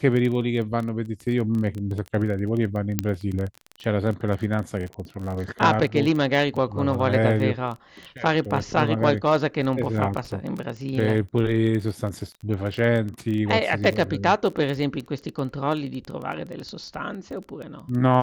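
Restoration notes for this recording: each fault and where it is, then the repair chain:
crackle 20 per s -28 dBFS
2.99 s: pop -6 dBFS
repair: de-click

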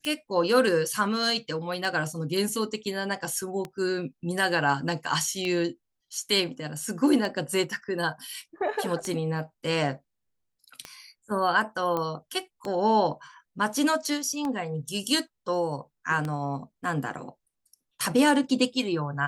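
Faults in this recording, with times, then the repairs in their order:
tick 33 1/3 rpm -18 dBFS
11.97 s: pop -16 dBFS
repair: de-click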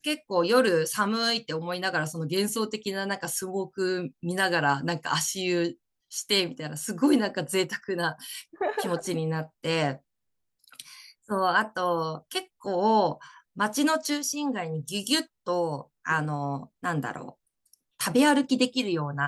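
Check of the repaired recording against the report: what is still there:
nothing left

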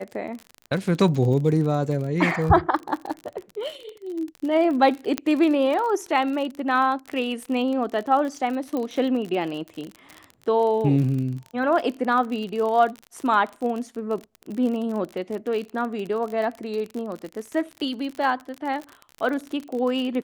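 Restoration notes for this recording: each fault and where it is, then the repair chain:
crackle 41 per s -29 dBFS
5.18 s: pop -8 dBFS
8.77 s: pop -17 dBFS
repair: de-click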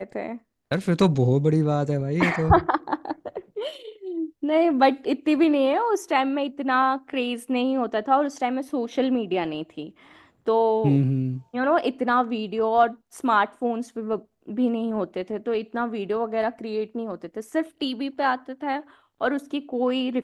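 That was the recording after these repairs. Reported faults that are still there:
nothing left

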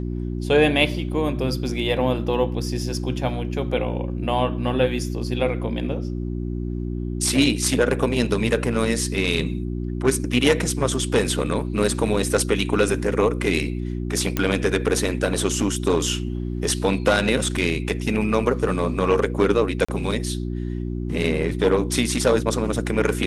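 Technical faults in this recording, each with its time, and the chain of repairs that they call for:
hum 60 Hz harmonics 6 -27 dBFS
14.37 s: pop -7 dBFS
19.85–19.89 s: dropout 35 ms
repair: de-click; de-hum 60 Hz, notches 6; interpolate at 19.85 s, 35 ms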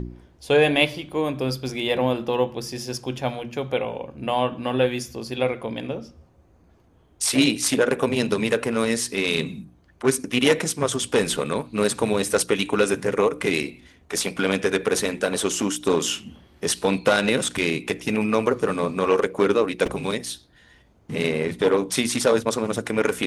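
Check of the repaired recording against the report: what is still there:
nothing left

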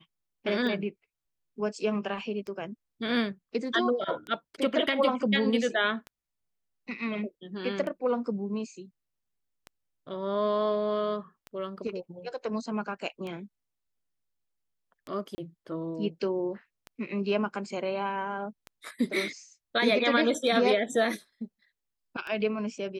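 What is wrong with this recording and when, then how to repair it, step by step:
tick 33 1/3 rpm -25 dBFS
15.35–15.38 s: dropout 30 ms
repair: de-click; interpolate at 15.35 s, 30 ms

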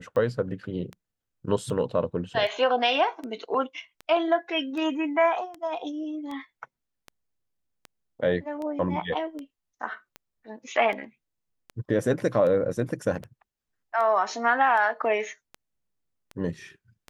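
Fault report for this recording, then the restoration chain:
tick 78 rpm -24 dBFS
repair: de-click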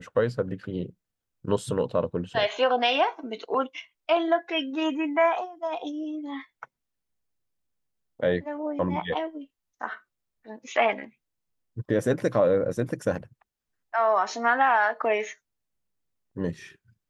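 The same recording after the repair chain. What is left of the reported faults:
nothing left

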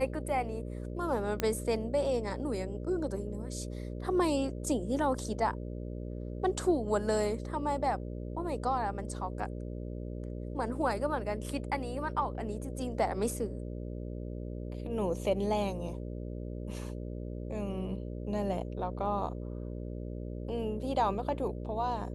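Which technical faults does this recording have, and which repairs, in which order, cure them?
buzz 60 Hz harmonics 10 -39 dBFS
1.40 s: pop -15 dBFS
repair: de-click; de-hum 60 Hz, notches 10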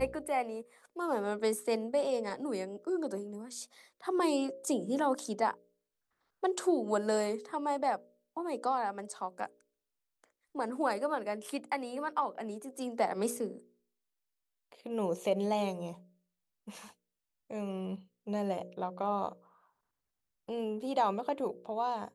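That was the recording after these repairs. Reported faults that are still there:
nothing left

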